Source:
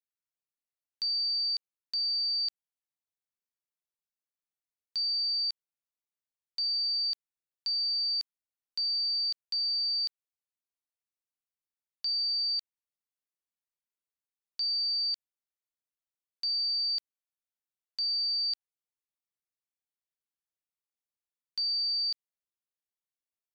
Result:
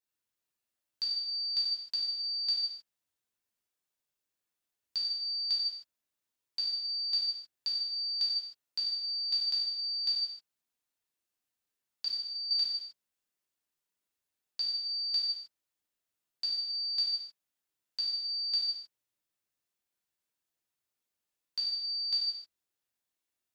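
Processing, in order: 12.05–12.51 comb 1 ms, depth 99%; non-linear reverb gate 0.34 s falling, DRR -5.5 dB

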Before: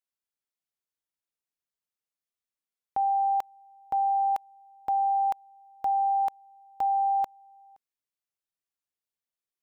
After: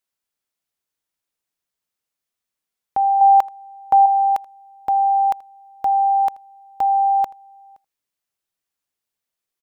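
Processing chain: 3.21–4.06 bell 980 Hz +6.5 dB 2 oct; echo 81 ms -23.5 dB; gain +8 dB

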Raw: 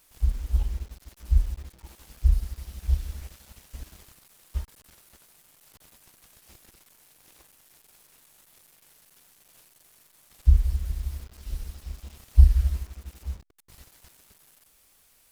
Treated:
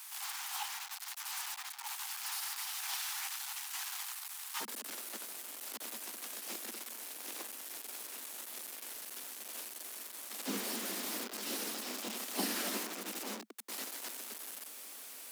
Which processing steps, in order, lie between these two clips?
steep high-pass 760 Hz 96 dB/oct, from 4.6 s 210 Hz; gain +12.5 dB

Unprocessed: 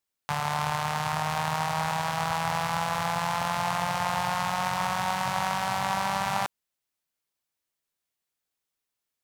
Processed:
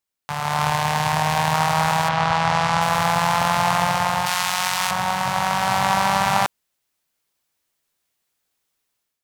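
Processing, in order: 0.69–1.54 notch 1300 Hz, Q 5.2; 2.08–2.8 LPF 3900 Hz -> 8200 Hz 12 dB/oct; 4.26–4.91 tilt shelf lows -9 dB, about 1300 Hz; AGC gain up to 10 dB

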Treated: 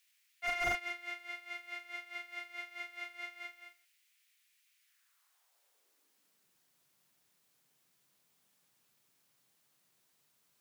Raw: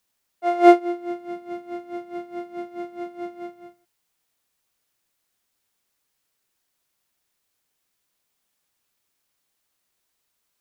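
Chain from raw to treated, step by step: high-pass sweep 2200 Hz -> 140 Hz, 4.81–6.52; slew limiter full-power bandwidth 44 Hz; gain +1 dB

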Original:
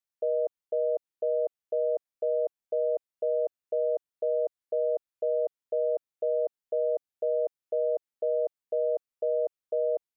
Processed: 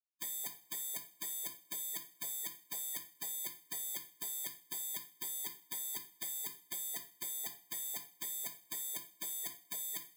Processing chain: FFT order left unsorted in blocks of 32 samples; low shelf 330 Hz -7.5 dB; spectral gate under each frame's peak -30 dB weak; two-slope reverb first 0.38 s, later 1.9 s, from -25 dB, DRR 6 dB; in parallel at -3 dB: limiter -55.5 dBFS, peak gain reduction 11 dB; on the sum: gain +16 dB

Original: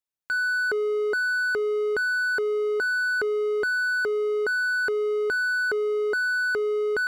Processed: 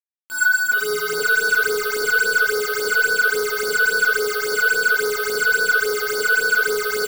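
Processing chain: opening faded in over 1.11 s; companded quantiser 2-bit; vocal rider within 3 dB 0.5 s; doubler 18 ms -6 dB; frequency-shifting echo 0.478 s, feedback 47%, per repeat +30 Hz, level -4.5 dB; bit-crush 5-bit; bell 100 Hz -9.5 dB 0.62 oct; Schroeder reverb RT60 1.5 s, DRR -3 dB; phaser stages 8, 3.6 Hz, lowest notch 270–2800 Hz

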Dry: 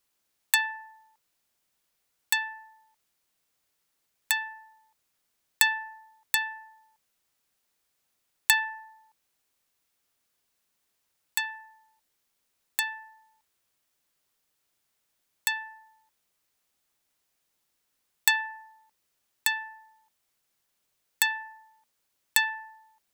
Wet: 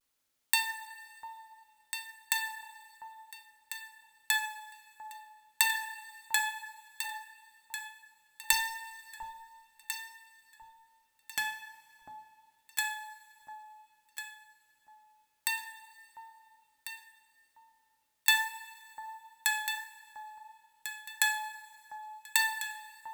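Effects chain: 8.52–11.38 self-modulated delay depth 0.12 ms; vibrato 0.6 Hz 44 cents; echo with dull and thin repeats by turns 0.698 s, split 940 Hz, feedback 51%, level -5 dB; two-slope reverb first 0.55 s, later 2.6 s, from -18 dB, DRR 4 dB; gain -4 dB

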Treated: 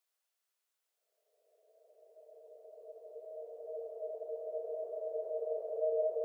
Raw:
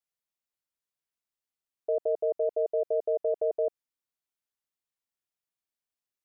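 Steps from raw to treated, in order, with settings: steep high-pass 410 Hz 36 dB/oct; Paulstretch 40×, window 0.50 s, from 1.62; gain +6 dB

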